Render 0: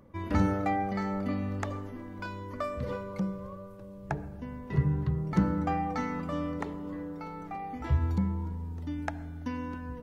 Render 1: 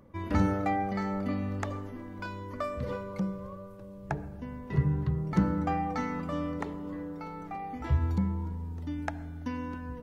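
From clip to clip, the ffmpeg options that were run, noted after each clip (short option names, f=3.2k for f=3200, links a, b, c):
-af anull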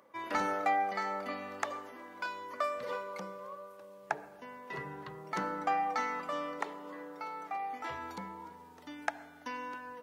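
-af "highpass=650,volume=3dB"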